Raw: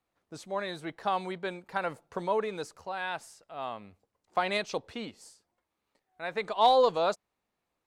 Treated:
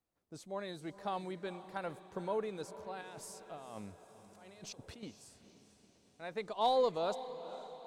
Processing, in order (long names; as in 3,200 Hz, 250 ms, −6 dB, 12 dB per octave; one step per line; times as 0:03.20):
parametric band 1,700 Hz −8 dB 3 octaves
0:03.01–0:05.03: compressor whose output falls as the input rises −48 dBFS, ratio −1
feedback delay with all-pass diffusion 469 ms, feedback 57%, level −13.5 dB
level −3.5 dB